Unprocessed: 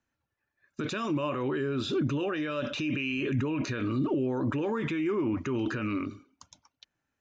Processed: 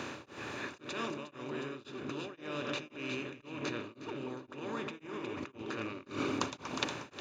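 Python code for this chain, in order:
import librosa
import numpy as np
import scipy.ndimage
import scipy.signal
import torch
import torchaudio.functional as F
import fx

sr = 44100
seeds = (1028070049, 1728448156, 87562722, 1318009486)

y = fx.bin_compress(x, sr, power=0.4)
y = fx.over_compress(y, sr, threshold_db=-34.0, ratio=-1.0)
y = fx.highpass(y, sr, hz=250.0, slope=6)
y = fx.echo_alternate(y, sr, ms=180, hz=850.0, feedback_pct=63, wet_db=-4)
y = y * np.abs(np.cos(np.pi * 1.9 * np.arange(len(y)) / sr))
y = F.gain(torch.from_numpy(y), -2.5).numpy()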